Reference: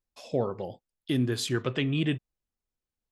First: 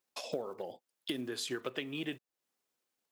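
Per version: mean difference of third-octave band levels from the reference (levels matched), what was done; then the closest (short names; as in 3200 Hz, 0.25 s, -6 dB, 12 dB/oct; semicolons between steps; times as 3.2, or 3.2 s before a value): 7.5 dB: block floating point 7-bit; transient shaper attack +6 dB, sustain +2 dB; HPF 320 Hz 12 dB/oct; compressor 3:1, threshold -47 dBFS, peak gain reduction 20 dB; gain +6.5 dB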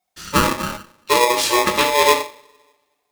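17.5 dB: high shelf 3300 Hz +4.5 dB; in parallel at +2 dB: level quantiser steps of 13 dB; on the sum: two-slope reverb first 0.41 s, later 1.5 s, from -27 dB, DRR -3 dB; polarity switched at an audio rate 730 Hz; gain +1.5 dB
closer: first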